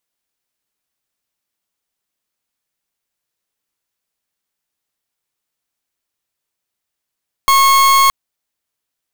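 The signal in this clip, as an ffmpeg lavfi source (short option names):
-f lavfi -i "aevalsrc='0.316*(2*lt(mod(1090*t,1),0.41)-1)':d=0.62:s=44100"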